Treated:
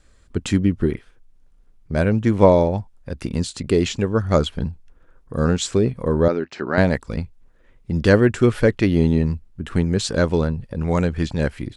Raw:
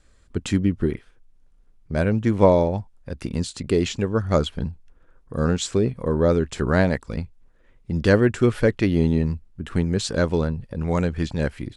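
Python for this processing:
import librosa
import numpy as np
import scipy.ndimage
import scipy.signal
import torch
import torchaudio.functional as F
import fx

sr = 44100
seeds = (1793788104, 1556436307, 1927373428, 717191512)

y = fx.cabinet(x, sr, low_hz=300.0, low_slope=12, high_hz=4800.0, hz=(480.0, 1100.0, 3400.0), db=(-7, -4, -10), at=(6.28, 6.78))
y = y * librosa.db_to_amplitude(2.5)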